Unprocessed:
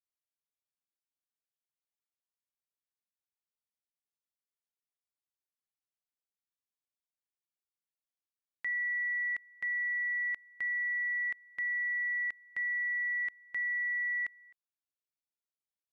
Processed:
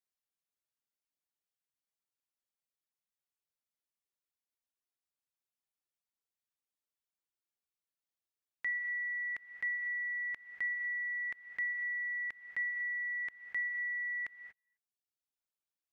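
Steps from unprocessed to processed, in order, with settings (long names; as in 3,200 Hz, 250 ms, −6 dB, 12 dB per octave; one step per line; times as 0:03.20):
reverb reduction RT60 1.1 s
reverb whose tail is shaped and stops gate 260 ms rising, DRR 8.5 dB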